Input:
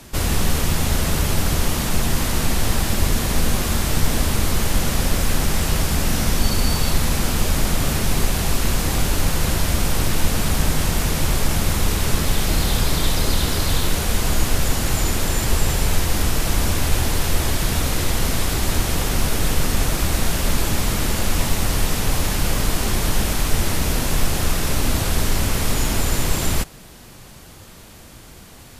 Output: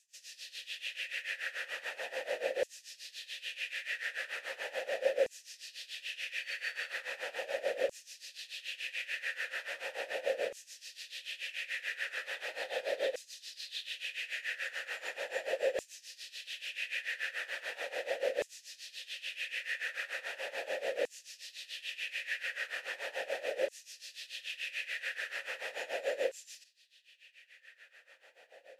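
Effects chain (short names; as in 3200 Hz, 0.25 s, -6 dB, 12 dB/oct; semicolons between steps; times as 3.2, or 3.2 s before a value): tremolo 6.9 Hz, depth 86%; vowel filter e; LFO high-pass saw down 0.38 Hz 480–7100 Hz; gain +3.5 dB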